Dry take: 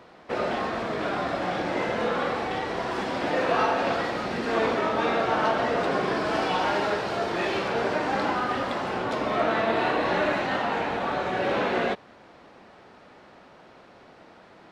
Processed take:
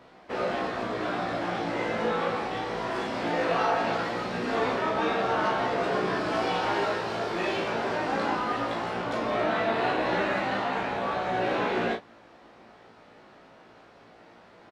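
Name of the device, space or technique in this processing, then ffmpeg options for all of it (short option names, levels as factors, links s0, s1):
double-tracked vocal: -filter_complex "[0:a]asplit=2[s0][s1];[s1]adelay=35,volume=0.501[s2];[s0][s2]amix=inputs=2:normalize=0,flanger=delay=15.5:depth=2.9:speed=0.19"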